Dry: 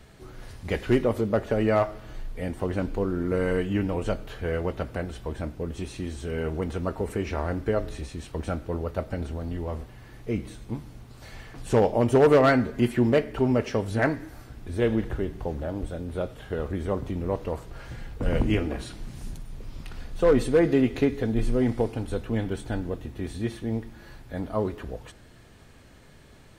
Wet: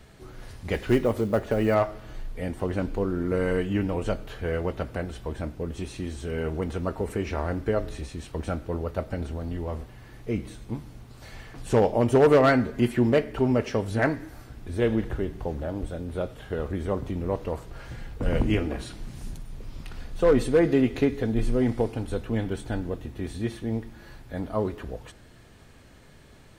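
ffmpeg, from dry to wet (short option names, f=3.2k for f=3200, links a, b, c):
-filter_complex "[0:a]asettb=1/sr,asplit=3[a][b][c];[a]atrim=end=0.734[d];[b]atrim=start=0.73:end=1.75,asetpts=PTS-STARTPTS,afade=t=in:d=0.004:c=qsin,afade=t=out:st=1.016:d=0.004:c=qsin,acrusher=bits=8:mode=log:mix=0:aa=0.000001[e];[c]atrim=start=1.746[f];[d][e]acrossfade=d=0.004:c1=hsin:c2=qsin[g];[g][f]acrossfade=d=0.004:c1=qsin:c2=hsin"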